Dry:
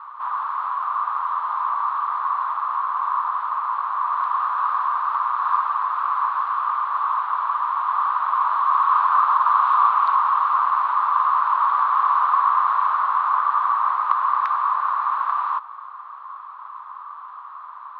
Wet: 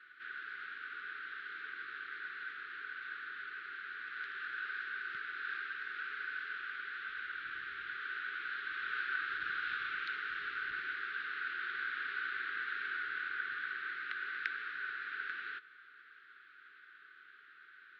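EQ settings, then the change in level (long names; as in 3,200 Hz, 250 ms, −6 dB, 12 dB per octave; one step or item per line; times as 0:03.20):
Chebyshev band-stop filter 430–1,500 Hz, order 5
high-frequency loss of the air 100 metres
+1.5 dB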